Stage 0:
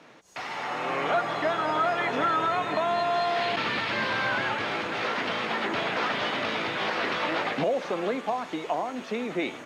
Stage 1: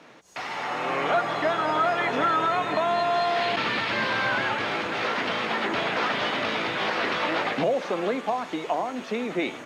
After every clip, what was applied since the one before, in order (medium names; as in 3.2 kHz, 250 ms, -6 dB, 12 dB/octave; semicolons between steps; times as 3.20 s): hum notches 50/100/150 Hz; trim +2 dB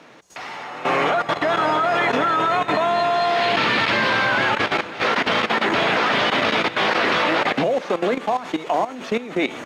level held to a coarse grid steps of 14 dB; trim +9 dB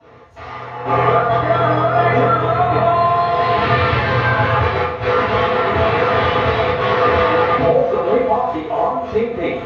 reverberation RT60 0.65 s, pre-delay 3 ms, DRR -20 dB; trim -18 dB